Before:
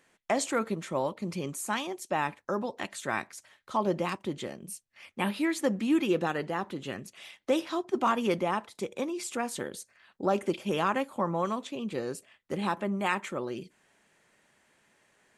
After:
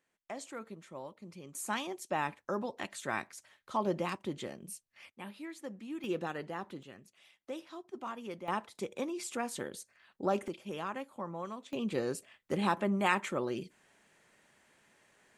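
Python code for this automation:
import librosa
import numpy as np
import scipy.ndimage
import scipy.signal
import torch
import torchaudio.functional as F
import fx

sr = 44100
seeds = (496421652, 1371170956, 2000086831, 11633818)

y = fx.gain(x, sr, db=fx.steps((0.0, -15.0), (1.55, -4.0), (5.1, -16.0), (6.04, -8.0), (6.83, -15.0), (8.48, -4.0), (10.48, -11.0), (11.73, 0.0)))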